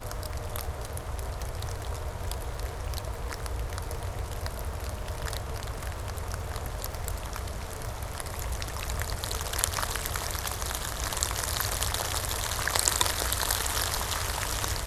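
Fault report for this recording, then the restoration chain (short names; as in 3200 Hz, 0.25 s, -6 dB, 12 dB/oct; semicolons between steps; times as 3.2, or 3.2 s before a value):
crackle 32/s -36 dBFS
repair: de-click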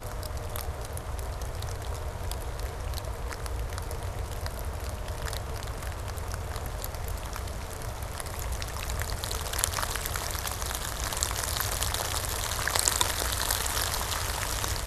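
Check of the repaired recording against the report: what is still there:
none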